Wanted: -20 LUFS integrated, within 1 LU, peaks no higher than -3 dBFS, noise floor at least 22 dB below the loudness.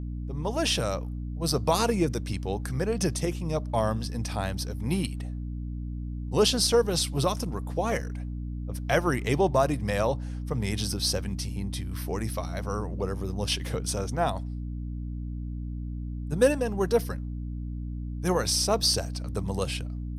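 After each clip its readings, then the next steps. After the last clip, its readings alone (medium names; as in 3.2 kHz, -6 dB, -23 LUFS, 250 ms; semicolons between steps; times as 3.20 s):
hum 60 Hz; highest harmonic 300 Hz; hum level -31 dBFS; loudness -28.5 LUFS; peak level -10.0 dBFS; loudness target -20.0 LUFS
-> hum notches 60/120/180/240/300 Hz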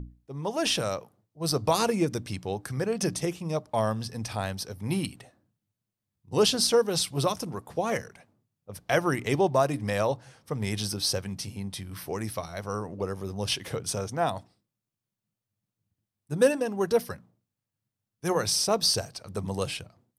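hum not found; loudness -28.5 LUFS; peak level -10.0 dBFS; loudness target -20.0 LUFS
-> trim +8.5 dB; peak limiter -3 dBFS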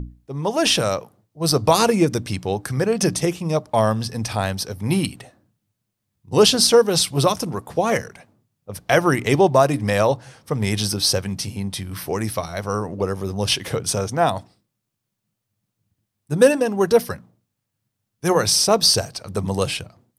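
loudness -20.0 LUFS; peak level -3.0 dBFS; noise floor -79 dBFS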